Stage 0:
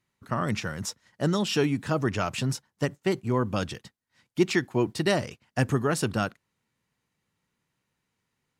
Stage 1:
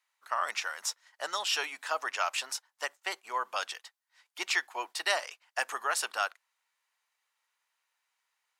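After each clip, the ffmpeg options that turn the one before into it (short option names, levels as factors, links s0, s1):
-af "highpass=f=750:w=0.5412,highpass=f=750:w=1.3066,volume=1.12"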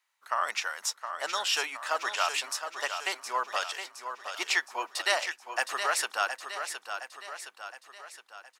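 -af "aecho=1:1:716|1432|2148|2864|3580|4296:0.398|0.207|0.108|0.056|0.0291|0.0151,volume=1.26"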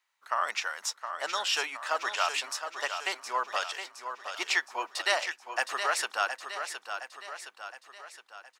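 -af "equalizer=f=12000:w=0.79:g=-5.5"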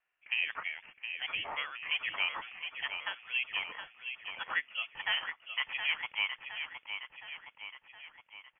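-filter_complex "[0:a]acrossover=split=2900[s0][s1];[s1]acompressor=threshold=0.00501:ratio=4:attack=1:release=60[s2];[s0][s2]amix=inputs=2:normalize=0,lowpass=f=3100:t=q:w=0.5098,lowpass=f=3100:t=q:w=0.6013,lowpass=f=3100:t=q:w=0.9,lowpass=f=3100:t=q:w=2.563,afreqshift=-3700,volume=0.708" -ar 11025 -c:a libmp3lame -b:a 40k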